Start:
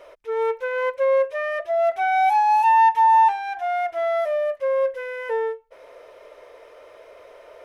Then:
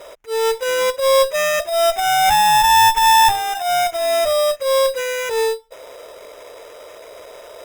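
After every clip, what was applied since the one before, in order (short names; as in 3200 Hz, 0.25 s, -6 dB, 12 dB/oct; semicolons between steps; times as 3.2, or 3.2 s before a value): sample-rate reducer 4400 Hz, jitter 0%; transient shaper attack -12 dB, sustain 0 dB; one-sided clip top -27 dBFS; gain +8.5 dB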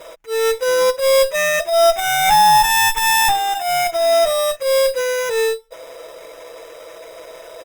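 comb 6.1 ms, depth 60%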